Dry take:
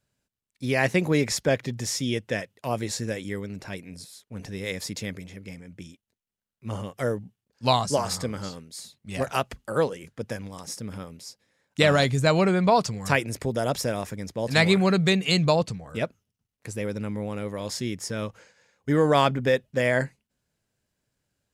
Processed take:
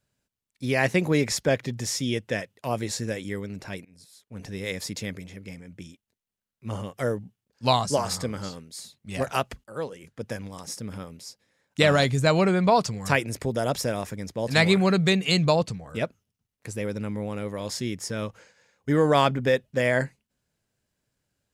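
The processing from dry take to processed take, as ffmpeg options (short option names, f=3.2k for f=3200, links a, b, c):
-filter_complex "[0:a]asplit=3[a][b][c];[a]atrim=end=3.85,asetpts=PTS-STARTPTS,afade=t=out:st=3.846:d=0.004:c=hsin:silence=0.0944061[d];[b]atrim=start=3.85:end=9.64,asetpts=PTS-STARTPTS,afade=t=in:d=0.67:silence=0.0944061,afade=t=out:st=5.786:d=0.004:c=hsin:silence=0.177828[e];[c]atrim=start=9.64,asetpts=PTS-STARTPTS,afade=t=in:d=0.72:silence=0.177828[f];[d][e][f]concat=n=3:v=0:a=1"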